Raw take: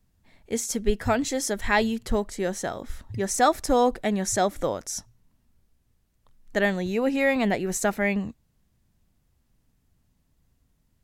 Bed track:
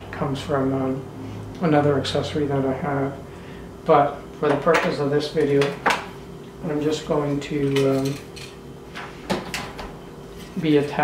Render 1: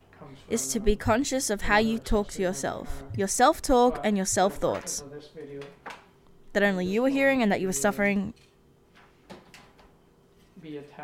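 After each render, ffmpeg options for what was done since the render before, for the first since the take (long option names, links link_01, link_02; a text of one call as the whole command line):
ffmpeg -i in.wav -i bed.wav -filter_complex "[1:a]volume=-21.5dB[link_01];[0:a][link_01]amix=inputs=2:normalize=0" out.wav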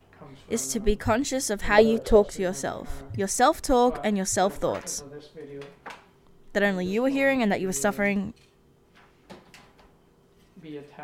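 ffmpeg -i in.wav -filter_complex "[0:a]asettb=1/sr,asplit=3[link_01][link_02][link_03];[link_01]atrim=end=1.784[link_04];[link_02]atrim=start=1.78:end=2.31,asetpts=PTS-STARTPTS,afade=type=in:duration=0.004:curve=qsin,afade=type=out:start_time=0.526:duration=0.004:curve=qsin,equalizer=frequency=520:width_type=o:width=0.9:gain=14[link_05];[link_03]atrim=start=2.306[link_06];[link_04][link_05]acrossfade=duration=0.004:curve1=hsin:curve2=qsin[link_07];[link_07][link_06]acrossfade=duration=0.004:curve1=qsin:curve2=hsin" out.wav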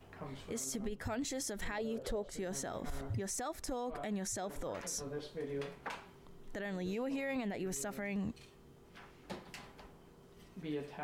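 ffmpeg -i in.wav -af "acompressor=threshold=-30dB:ratio=16,alimiter=level_in=6.5dB:limit=-24dB:level=0:latency=1:release=38,volume=-6.5dB" out.wav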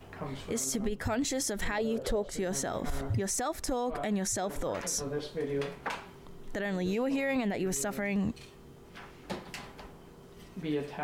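ffmpeg -i in.wav -af "volume=7.5dB" out.wav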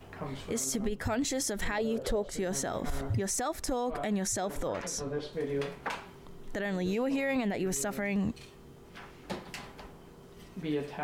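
ffmpeg -i in.wav -filter_complex "[0:a]asettb=1/sr,asplit=3[link_01][link_02][link_03];[link_01]atrim=end=4.684[link_04];[link_02]atrim=start=4.68:end=5.33,asetpts=PTS-STARTPTS,afade=type=in:duration=0.004:curve=qsin,afade=type=out:start_time=0.646:duration=0.004:curve=qsin,highshelf=frequency=8400:gain=-11[link_05];[link_03]atrim=start=5.326[link_06];[link_04][link_05]acrossfade=duration=0.004:curve1=hsin:curve2=qsin[link_07];[link_07][link_06]acrossfade=duration=0.004:curve1=qsin:curve2=hsin" out.wav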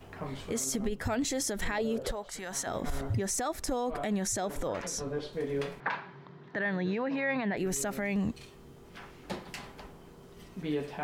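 ffmpeg -i in.wav -filter_complex "[0:a]asettb=1/sr,asplit=3[link_01][link_02][link_03];[link_01]atrim=end=2.114[link_04];[link_02]atrim=start=2.11:end=2.67,asetpts=PTS-STARTPTS,afade=type=in:duration=0.004:curve=qsin,afade=type=out:start_time=0.556:duration=0.004:curve=qsin,lowshelf=frequency=640:width_type=q:width=1.5:gain=-9.5[link_05];[link_03]atrim=start=2.666[link_06];[link_04][link_05]acrossfade=duration=0.004:curve1=hsin:curve2=qsin[link_07];[link_07][link_06]acrossfade=duration=0.004:curve1=qsin:curve2=hsin,asettb=1/sr,asplit=3[link_08][link_09][link_10];[link_08]atrim=end=5.804[link_11];[link_09]atrim=start=5.8:end=7.57,asetpts=PTS-STARTPTS,afade=type=in:duration=0.004:curve=qsin,afade=type=out:start_time=1.766:duration=0.004:curve=qsin,highpass=frequency=130:width=0.5412,highpass=frequency=130:width=1.3066,equalizer=frequency=140:width_type=q:width=4:gain=8,equalizer=frequency=250:width_type=q:width=4:gain=-4,equalizer=frequency=480:width_type=q:width=4:gain=-3,equalizer=frequency=990:width_type=q:width=4:gain=4,equalizer=frequency=1700:width_type=q:width=4:gain=8,equalizer=frequency=3000:width_type=q:width=4:gain=-5,lowpass=frequency=4200:width=0.5412,lowpass=frequency=4200:width=1.3066[link_12];[link_10]atrim=start=7.566[link_13];[link_11][link_12]acrossfade=duration=0.004:curve1=hsin:curve2=qsin[link_14];[link_14][link_13]acrossfade=duration=0.004:curve1=qsin:curve2=hsin" out.wav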